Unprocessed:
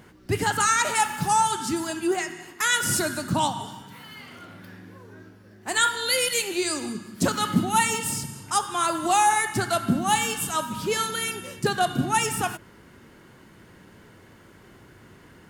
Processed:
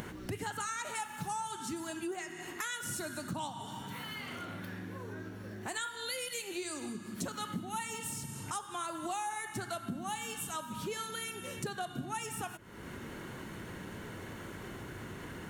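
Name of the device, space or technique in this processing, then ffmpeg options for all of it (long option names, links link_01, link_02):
upward and downward compression: -af "bandreject=frequency=4900:width=8.1,acompressor=mode=upward:threshold=-30dB:ratio=2.5,acompressor=threshold=-34dB:ratio=4,volume=-3.5dB"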